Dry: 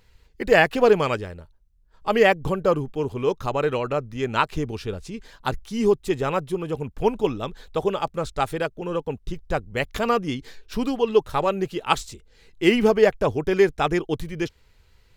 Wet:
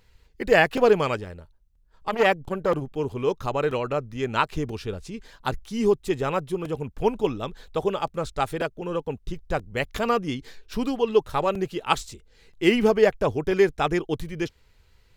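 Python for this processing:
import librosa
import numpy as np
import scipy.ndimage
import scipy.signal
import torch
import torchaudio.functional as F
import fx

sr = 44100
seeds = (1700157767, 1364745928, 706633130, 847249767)

y = fx.buffer_crackle(x, sr, first_s=0.77, period_s=0.98, block=128, kind='repeat')
y = fx.transformer_sat(y, sr, knee_hz=760.0, at=(1.11, 2.92))
y = F.gain(torch.from_numpy(y), -1.5).numpy()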